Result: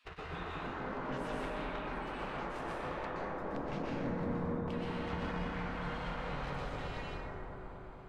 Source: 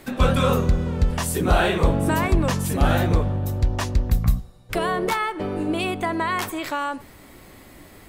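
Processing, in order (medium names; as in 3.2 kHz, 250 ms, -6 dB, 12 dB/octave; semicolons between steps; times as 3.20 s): Doppler pass-by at 2.55 s, 17 m/s, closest 12 m; bass shelf 100 Hz +2.5 dB; in parallel at -9 dB: companded quantiser 2-bit; on the sum: low-pass 2.2 kHz 12 dB/octave; spectral gate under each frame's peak -20 dB weak; compression 10:1, threshold -54 dBFS, peak gain reduction 33.5 dB; bass shelf 280 Hz +12 dB; bucket-brigade echo 232 ms, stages 2048, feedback 72%, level -3.5 dB; plate-style reverb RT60 2.9 s, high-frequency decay 0.3×, pre-delay 110 ms, DRR -6.5 dB; trim +5.5 dB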